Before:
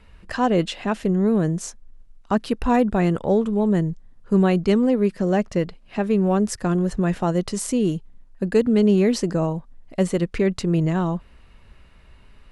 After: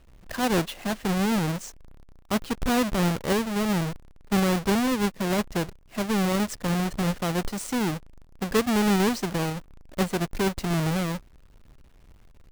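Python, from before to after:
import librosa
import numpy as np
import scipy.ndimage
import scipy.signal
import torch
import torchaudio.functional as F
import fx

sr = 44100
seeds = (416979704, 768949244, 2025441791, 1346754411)

y = fx.halfwave_hold(x, sr)
y = fx.quant_float(y, sr, bits=2)
y = F.gain(torch.from_numpy(y), -9.0).numpy()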